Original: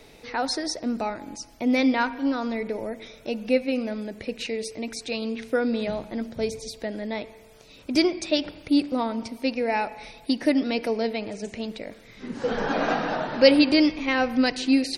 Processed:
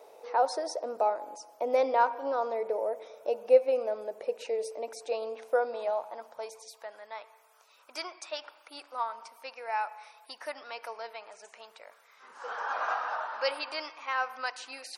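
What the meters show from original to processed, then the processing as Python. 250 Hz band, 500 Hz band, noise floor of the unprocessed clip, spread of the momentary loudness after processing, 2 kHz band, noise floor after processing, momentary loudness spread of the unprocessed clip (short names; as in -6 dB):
-27.0 dB, -4.0 dB, -50 dBFS, 18 LU, -8.0 dB, -61 dBFS, 13 LU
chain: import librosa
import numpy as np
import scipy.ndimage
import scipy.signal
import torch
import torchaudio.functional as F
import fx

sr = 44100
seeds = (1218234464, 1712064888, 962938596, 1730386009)

y = fx.graphic_eq(x, sr, hz=(250, 500, 1000, 2000, 4000, 8000), db=(-9, 3, 6, -10, -9, -3))
y = fx.filter_sweep_highpass(y, sr, from_hz=520.0, to_hz=1300.0, start_s=5.1, end_s=7.07, q=1.7)
y = y * 10.0 ** (-3.5 / 20.0)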